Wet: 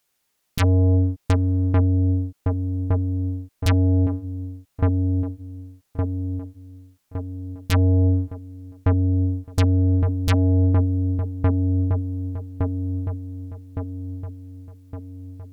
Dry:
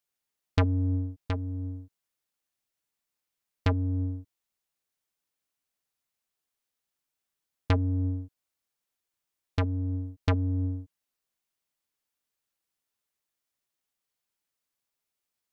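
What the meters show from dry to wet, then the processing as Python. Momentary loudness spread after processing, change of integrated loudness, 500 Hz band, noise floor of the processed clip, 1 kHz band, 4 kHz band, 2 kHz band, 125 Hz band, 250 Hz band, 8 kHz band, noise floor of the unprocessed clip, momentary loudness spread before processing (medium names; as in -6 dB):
18 LU, +8.0 dB, +11.5 dB, -72 dBFS, +7.5 dB, +8.5 dB, +7.0 dB, +12.5 dB, +12.0 dB, no reading, under -85 dBFS, 11 LU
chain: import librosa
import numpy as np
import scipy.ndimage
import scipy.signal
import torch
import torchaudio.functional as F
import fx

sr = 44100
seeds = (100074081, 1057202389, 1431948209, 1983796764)

y = fx.echo_wet_lowpass(x, sr, ms=1163, feedback_pct=50, hz=790.0, wet_db=-5)
y = fx.fold_sine(y, sr, drive_db=12, ceiling_db=-12.0)
y = y * librosa.db_to_amplitude(-2.0)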